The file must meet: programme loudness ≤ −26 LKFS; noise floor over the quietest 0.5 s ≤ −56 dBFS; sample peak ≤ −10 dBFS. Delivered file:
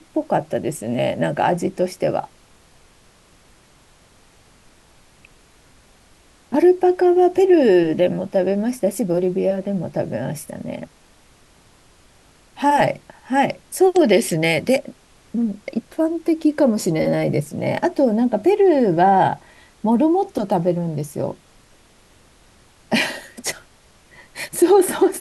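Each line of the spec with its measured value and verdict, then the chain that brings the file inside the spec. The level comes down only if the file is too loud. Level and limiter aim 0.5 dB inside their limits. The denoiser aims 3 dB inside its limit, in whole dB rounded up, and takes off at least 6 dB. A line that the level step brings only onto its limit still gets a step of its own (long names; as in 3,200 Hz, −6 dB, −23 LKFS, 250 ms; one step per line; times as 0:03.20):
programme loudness −19.0 LKFS: out of spec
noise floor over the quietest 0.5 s −52 dBFS: out of spec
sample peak −3.5 dBFS: out of spec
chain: level −7.5 dB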